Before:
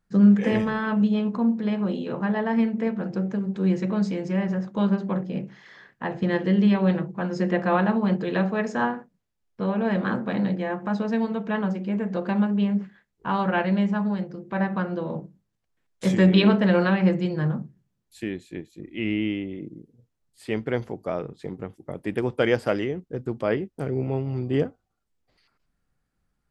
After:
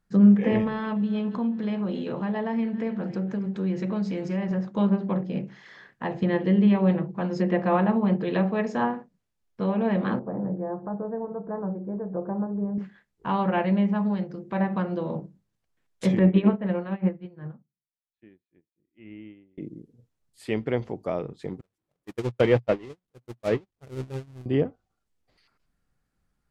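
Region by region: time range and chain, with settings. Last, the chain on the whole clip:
0.67–4.51 s: feedback echo behind a high-pass 276 ms, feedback 53%, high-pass 1.8 kHz, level -16 dB + compression 2:1, threshold -26 dBFS
10.19–12.78 s: Gaussian low-pass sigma 8.5 samples + peaking EQ 230 Hz -13 dB 0.34 oct
16.19–19.58 s: Gaussian low-pass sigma 2.8 samples + upward expansion 2.5:1, over -38 dBFS
21.61–24.46 s: jump at every zero crossing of -22.5 dBFS + gate -20 dBFS, range -58 dB + peaking EQ 120 Hz +6 dB 0.35 oct
whole clip: low-pass that closes with the level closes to 2.6 kHz, closed at -19 dBFS; dynamic bell 1.5 kHz, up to -7 dB, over -47 dBFS, Q 3.2

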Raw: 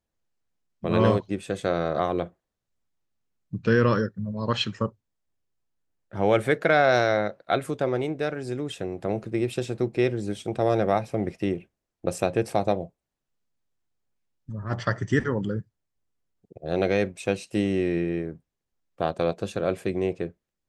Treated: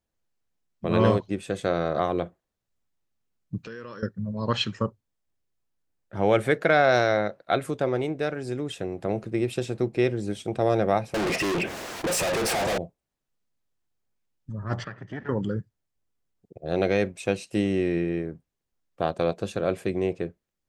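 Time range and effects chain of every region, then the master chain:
3.58–4.03 s: high-pass 340 Hz 6 dB/octave + treble shelf 6.7 kHz +6.5 dB + compression 4:1, threshold -39 dBFS
11.14–12.78 s: overdrive pedal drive 36 dB, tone 3.1 kHz, clips at -8.5 dBFS + overload inside the chain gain 25 dB + level flattener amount 70%
14.84–15.29 s: comb filter that takes the minimum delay 0.62 ms + compression 2:1, threshold -40 dBFS + band-pass 120–2700 Hz
whole clip: none

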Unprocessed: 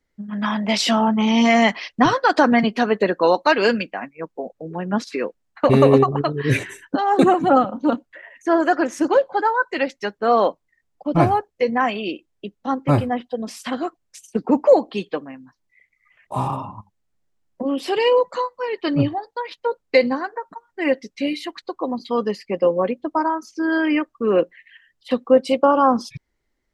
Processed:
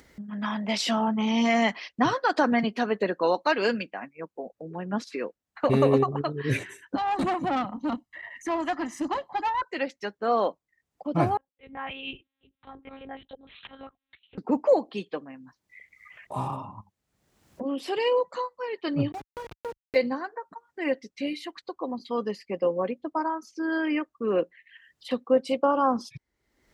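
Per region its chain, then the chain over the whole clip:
6.96–9.62 s: comb 1 ms, depth 88% + valve stage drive 14 dB, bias 0.5 + three bands compressed up and down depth 40%
11.37–14.38 s: treble shelf 2 kHz +12 dB + slow attack 782 ms + monotone LPC vocoder at 8 kHz 270 Hz
19.12–19.96 s: send-on-delta sampling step -25 dBFS + low-pass 2.5 kHz 6 dB/octave + compression 2:1, threshold -26 dBFS
whole clip: high-pass 49 Hz; upward compressor, threshold -28 dBFS; trim -7.5 dB

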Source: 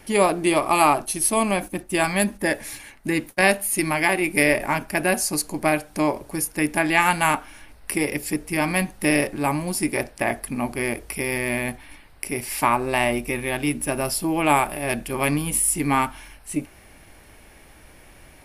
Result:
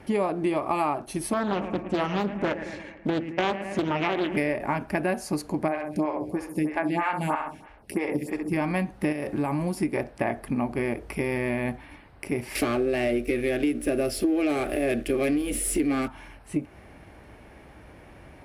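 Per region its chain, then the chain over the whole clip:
1.33–4.37 s: low-pass 7.2 kHz 24 dB/octave + bucket-brigade echo 110 ms, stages 2048, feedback 56%, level -14 dB + loudspeaker Doppler distortion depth 0.83 ms
5.68–8.52 s: flutter echo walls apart 11.3 m, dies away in 0.59 s + lamp-driven phase shifter 3.1 Hz
9.12–9.77 s: treble shelf 7.4 kHz +7.5 dB + compression 10:1, threshold -22 dBFS
12.55–16.08 s: waveshaping leveller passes 3 + static phaser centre 390 Hz, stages 4
whole clip: low-pass 1.1 kHz 6 dB/octave; compression 5:1, threshold -27 dBFS; high-pass 54 Hz; trim +4 dB

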